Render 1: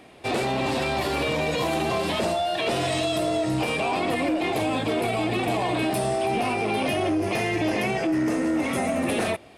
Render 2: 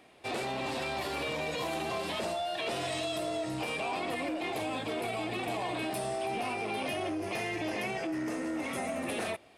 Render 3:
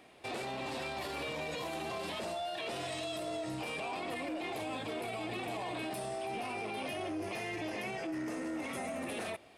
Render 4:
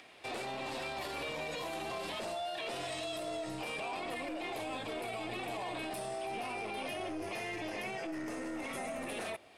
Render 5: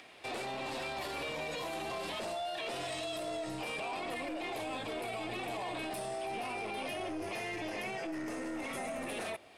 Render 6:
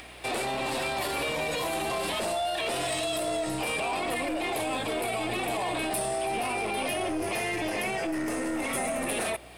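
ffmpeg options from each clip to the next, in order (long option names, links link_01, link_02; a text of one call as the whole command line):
ffmpeg -i in.wav -af "lowshelf=frequency=380:gain=-6,volume=-7.5dB" out.wav
ffmpeg -i in.wav -af "alimiter=level_in=7.5dB:limit=-24dB:level=0:latency=1,volume=-7.5dB" out.wav
ffmpeg -i in.wav -filter_complex "[0:a]acrossover=split=380|1300|6700[link_01][link_02][link_03][link_04];[link_01]aeval=exprs='(tanh(89.1*val(0)+0.65)-tanh(0.65))/89.1':channel_layout=same[link_05];[link_03]acompressor=mode=upward:threshold=-52dB:ratio=2.5[link_06];[link_05][link_02][link_06][link_04]amix=inputs=4:normalize=0" out.wav
ffmpeg -i in.wav -af "asoftclip=type=tanh:threshold=-30dB,volume=1.5dB" out.wav
ffmpeg -i in.wav -af "aeval=exprs='val(0)+0.000794*(sin(2*PI*60*n/s)+sin(2*PI*2*60*n/s)/2+sin(2*PI*3*60*n/s)/3+sin(2*PI*4*60*n/s)/4+sin(2*PI*5*60*n/s)/5)':channel_layout=same,aexciter=amount=2.1:drive=6.3:freq=8300,volume=8.5dB" out.wav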